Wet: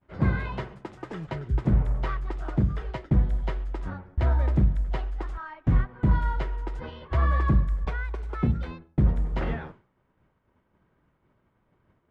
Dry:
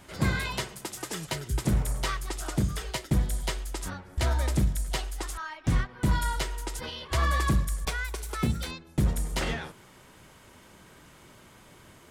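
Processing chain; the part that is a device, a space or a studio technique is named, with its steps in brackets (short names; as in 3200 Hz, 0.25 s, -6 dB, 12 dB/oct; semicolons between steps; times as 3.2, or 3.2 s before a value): hearing-loss simulation (LPF 1600 Hz 12 dB/oct; expander -43 dBFS); low shelf 230 Hz +4.5 dB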